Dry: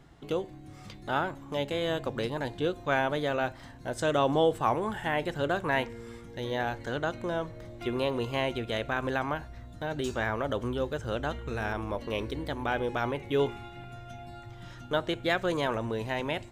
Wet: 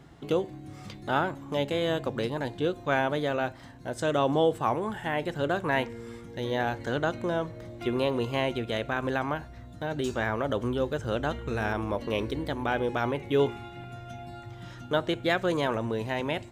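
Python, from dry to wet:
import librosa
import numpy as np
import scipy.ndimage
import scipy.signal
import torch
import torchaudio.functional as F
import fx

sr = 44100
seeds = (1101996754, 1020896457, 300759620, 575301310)

y = fx.highpass(x, sr, hz=120.0, slope=6)
y = fx.low_shelf(y, sr, hz=340.0, db=5.0)
y = fx.rider(y, sr, range_db=3, speed_s=2.0)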